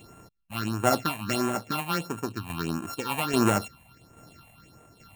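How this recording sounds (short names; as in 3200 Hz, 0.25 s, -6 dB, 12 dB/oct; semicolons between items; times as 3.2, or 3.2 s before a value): a buzz of ramps at a fixed pitch in blocks of 32 samples; tremolo saw down 1.2 Hz, depth 55%; phasing stages 6, 1.5 Hz, lowest notch 360–4600 Hz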